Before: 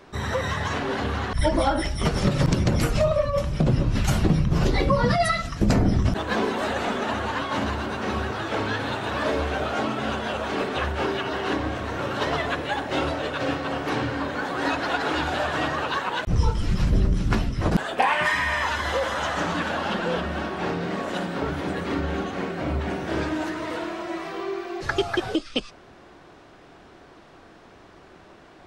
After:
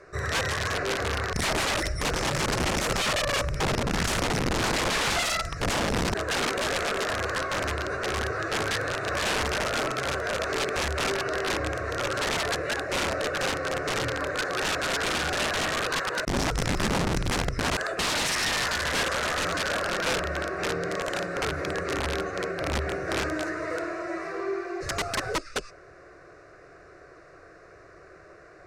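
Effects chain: low shelf 91 Hz -5 dB; fixed phaser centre 880 Hz, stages 6; wrapped overs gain 23 dB; LPF 8100 Hz 12 dB/oct; gain +2.5 dB

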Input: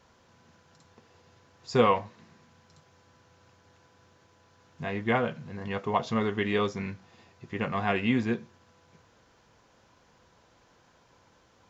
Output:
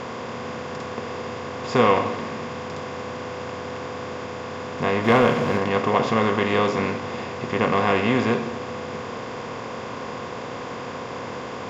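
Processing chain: per-bin compression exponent 0.4; 5.04–5.58 sample leveller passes 1; on a send: reverb RT60 1.1 s, pre-delay 71 ms, DRR 11 dB; on the sum: gain +1 dB

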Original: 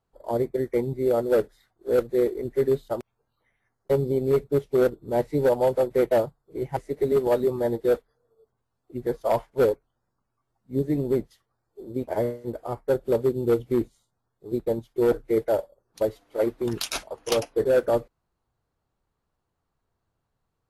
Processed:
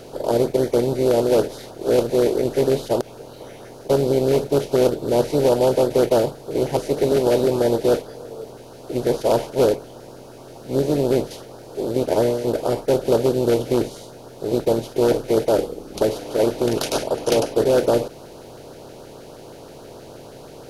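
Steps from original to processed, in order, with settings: per-bin compression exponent 0.4; LFO notch saw up 6.3 Hz 860–2500 Hz; 15.58–16.02 frequency shift -94 Hz

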